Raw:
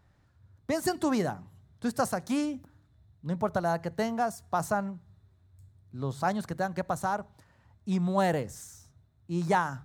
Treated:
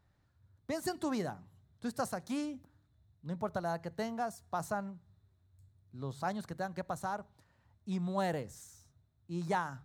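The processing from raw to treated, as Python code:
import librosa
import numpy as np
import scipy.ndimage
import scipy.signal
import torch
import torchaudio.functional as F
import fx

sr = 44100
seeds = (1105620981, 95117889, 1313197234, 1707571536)

y = fx.peak_eq(x, sr, hz=4000.0, db=3.0, octaves=0.35)
y = F.gain(torch.from_numpy(y), -7.5).numpy()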